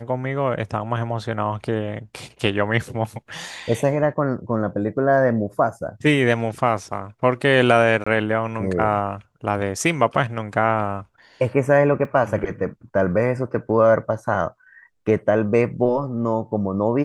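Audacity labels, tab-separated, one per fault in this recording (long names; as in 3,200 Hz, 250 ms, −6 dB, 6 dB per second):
8.040000	8.060000	drop-out 25 ms
12.050000	12.050000	drop-out 2.2 ms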